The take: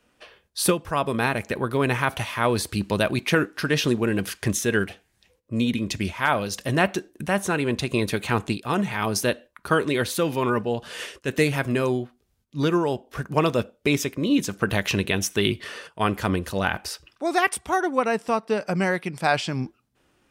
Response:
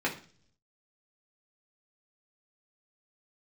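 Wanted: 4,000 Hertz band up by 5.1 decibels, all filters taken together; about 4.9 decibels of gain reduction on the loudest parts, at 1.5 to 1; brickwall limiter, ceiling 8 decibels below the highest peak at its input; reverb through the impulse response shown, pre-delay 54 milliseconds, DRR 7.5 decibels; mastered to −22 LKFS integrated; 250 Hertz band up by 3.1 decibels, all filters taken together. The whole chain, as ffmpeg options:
-filter_complex "[0:a]equalizer=frequency=250:width_type=o:gain=4,equalizer=frequency=4000:width_type=o:gain=6.5,acompressor=threshold=-27dB:ratio=1.5,alimiter=limit=-15dB:level=0:latency=1,asplit=2[link_01][link_02];[1:a]atrim=start_sample=2205,adelay=54[link_03];[link_02][link_03]afir=irnorm=-1:irlink=0,volume=-16.5dB[link_04];[link_01][link_04]amix=inputs=2:normalize=0,volume=5dB"

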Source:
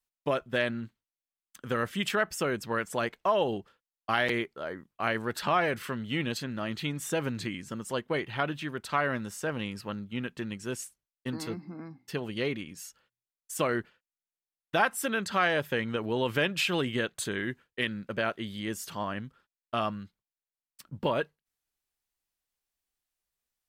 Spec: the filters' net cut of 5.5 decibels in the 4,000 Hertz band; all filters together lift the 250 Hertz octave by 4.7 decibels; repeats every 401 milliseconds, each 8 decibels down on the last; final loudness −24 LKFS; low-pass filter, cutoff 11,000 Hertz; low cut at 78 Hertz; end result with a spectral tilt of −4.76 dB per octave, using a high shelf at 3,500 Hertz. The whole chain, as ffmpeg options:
ffmpeg -i in.wav -af "highpass=78,lowpass=11000,equalizer=frequency=250:width_type=o:gain=6,highshelf=frequency=3500:gain=-3,equalizer=frequency=4000:width_type=o:gain=-6,aecho=1:1:401|802|1203|1604|2005:0.398|0.159|0.0637|0.0255|0.0102,volume=6.5dB" out.wav

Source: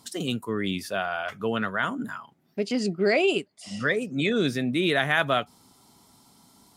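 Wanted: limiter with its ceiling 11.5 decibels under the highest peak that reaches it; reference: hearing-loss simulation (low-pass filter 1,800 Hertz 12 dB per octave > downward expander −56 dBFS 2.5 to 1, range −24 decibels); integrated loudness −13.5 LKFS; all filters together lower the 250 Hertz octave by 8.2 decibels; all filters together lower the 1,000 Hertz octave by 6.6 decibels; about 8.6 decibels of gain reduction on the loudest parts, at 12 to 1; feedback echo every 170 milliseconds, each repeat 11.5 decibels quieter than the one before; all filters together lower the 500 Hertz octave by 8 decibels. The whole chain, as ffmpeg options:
ffmpeg -i in.wav -af "equalizer=frequency=250:width_type=o:gain=-8.5,equalizer=frequency=500:width_type=o:gain=-6,equalizer=frequency=1000:width_type=o:gain=-6.5,acompressor=threshold=-31dB:ratio=12,alimiter=level_in=7dB:limit=-24dB:level=0:latency=1,volume=-7dB,lowpass=1800,aecho=1:1:170|340|510:0.266|0.0718|0.0194,agate=range=-24dB:threshold=-56dB:ratio=2.5,volume=29.5dB" out.wav

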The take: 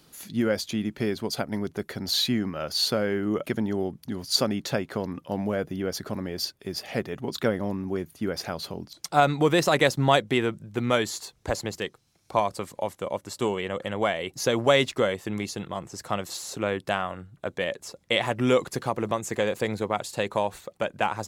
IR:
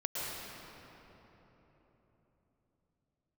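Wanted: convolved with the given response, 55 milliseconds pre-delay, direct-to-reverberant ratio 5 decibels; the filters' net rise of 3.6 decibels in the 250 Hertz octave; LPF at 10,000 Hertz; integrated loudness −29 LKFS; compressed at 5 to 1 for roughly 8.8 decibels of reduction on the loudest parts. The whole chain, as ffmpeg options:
-filter_complex "[0:a]lowpass=10000,equalizer=frequency=250:width_type=o:gain=4.5,acompressor=threshold=-24dB:ratio=5,asplit=2[link_01][link_02];[1:a]atrim=start_sample=2205,adelay=55[link_03];[link_02][link_03]afir=irnorm=-1:irlink=0,volume=-10dB[link_04];[link_01][link_04]amix=inputs=2:normalize=0,volume=0.5dB"

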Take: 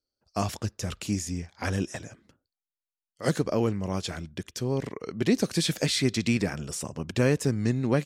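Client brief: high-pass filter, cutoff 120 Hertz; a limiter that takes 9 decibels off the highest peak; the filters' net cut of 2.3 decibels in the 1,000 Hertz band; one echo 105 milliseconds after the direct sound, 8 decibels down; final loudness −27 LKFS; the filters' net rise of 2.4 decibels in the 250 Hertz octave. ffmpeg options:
ffmpeg -i in.wav -af "highpass=120,equalizer=frequency=250:width_type=o:gain=3.5,equalizer=frequency=1000:width_type=o:gain=-3.5,alimiter=limit=-18.5dB:level=0:latency=1,aecho=1:1:105:0.398,volume=3.5dB" out.wav

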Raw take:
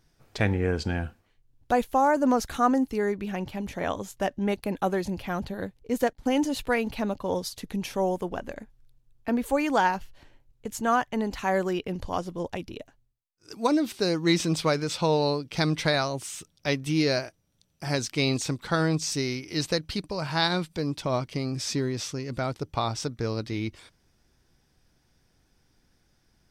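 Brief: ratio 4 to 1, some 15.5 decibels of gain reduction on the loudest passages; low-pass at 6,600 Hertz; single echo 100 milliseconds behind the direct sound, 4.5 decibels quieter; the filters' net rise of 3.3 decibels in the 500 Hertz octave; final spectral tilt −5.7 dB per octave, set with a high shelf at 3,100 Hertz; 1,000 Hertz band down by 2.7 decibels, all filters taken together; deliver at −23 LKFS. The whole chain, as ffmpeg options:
ffmpeg -i in.wav -af "lowpass=6600,equalizer=frequency=500:width_type=o:gain=5.5,equalizer=frequency=1000:width_type=o:gain=-5.5,highshelf=frequency=3100:gain=-7.5,acompressor=threshold=-37dB:ratio=4,aecho=1:1:100:0.596,volume=15.5dB" out.wav

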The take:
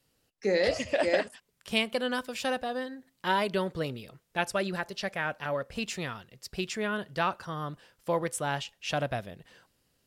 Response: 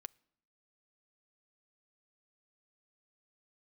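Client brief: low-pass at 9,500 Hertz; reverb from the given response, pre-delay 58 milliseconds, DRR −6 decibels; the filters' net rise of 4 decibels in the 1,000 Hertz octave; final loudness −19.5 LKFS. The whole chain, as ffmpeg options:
-filter_complex "[0:a]lowpass=9500,equalizer=frequency=1000:width_type=o:gain=5,asplit=2[link_01][link_02];[1:a]atrim=start_sample=2205,adelay=58[link_03];[link_02][link_03]afir=irnorm=-1:irlink=0,volume=11.5dB[link_04];[link_01][link_04]amix=inputs=2:normalize=0,volume=3.5dB"

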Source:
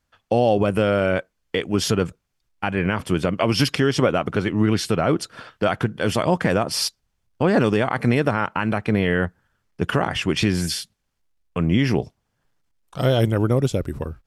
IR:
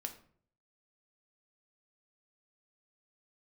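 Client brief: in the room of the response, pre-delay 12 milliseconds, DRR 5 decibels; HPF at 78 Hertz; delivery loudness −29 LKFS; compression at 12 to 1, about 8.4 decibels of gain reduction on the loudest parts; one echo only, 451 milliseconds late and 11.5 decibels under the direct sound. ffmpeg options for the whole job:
-filter_complex "[0:a]highpass=78,acompressor=threshold=-22dB:ratio=12,aecho=1:1:451:0.266,asplit=2[link_01][link_02];[1:a]atrim=start_sample=2205,adelay=12[link_03];[link_02][link_03]afir=irnorm=-1:irlink=0,volume=-3dB[link_04];[link_01][link_04]amix=inputs=2:normalize=0,volume=-1.5dB"

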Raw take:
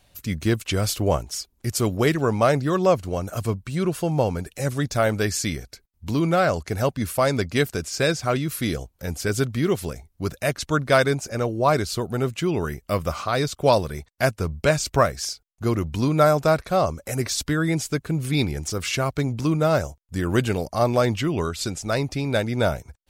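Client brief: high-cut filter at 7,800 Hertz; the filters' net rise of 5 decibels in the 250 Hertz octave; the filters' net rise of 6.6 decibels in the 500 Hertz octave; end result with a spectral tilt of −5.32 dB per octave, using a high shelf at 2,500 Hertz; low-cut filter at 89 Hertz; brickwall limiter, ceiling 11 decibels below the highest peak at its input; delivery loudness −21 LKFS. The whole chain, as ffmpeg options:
ffmpeg -i in.wav -af "highpass=89,lowpass=7800,equalizer=frequency=250:width_type=o:gain=4.5,equalizer=frequency=500:width_type=o:gain=7,highshelf=frequency=2500:gain=4,volume=1dB,alimiter=limit=-9dB:level=0:latency=1" out.wav

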